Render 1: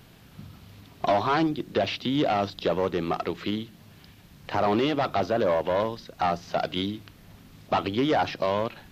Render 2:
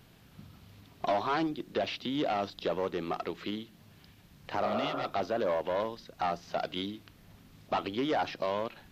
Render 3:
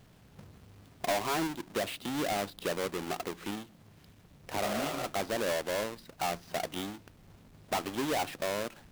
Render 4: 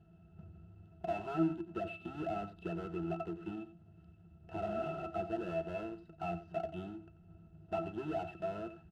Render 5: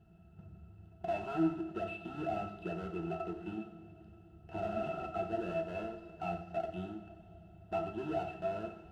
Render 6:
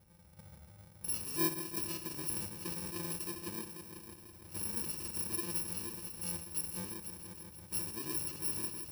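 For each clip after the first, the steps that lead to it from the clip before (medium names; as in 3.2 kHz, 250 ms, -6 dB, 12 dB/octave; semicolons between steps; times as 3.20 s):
dynamic bell 110 Hz, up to -7 dB, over -44 dBFS, Q 1.1; spectral replace 4.67–5.02 s, 300–1800 Hz; trim -6 dB
square wave that keeps the level; trim -5.5 dB
pitch-class resonator E, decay 0.11 s; delay 89 ms -13 dB; trim +5 dB
two-slope reverb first 0.46 s, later 4.2 s, from -18 dB, DRR 3 dB
bit-reversed sample order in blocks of 64 samples; on a send: multi-head delay 164 ms, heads all three, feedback 58%, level -13.5 dB; on the sum: trim -2 dB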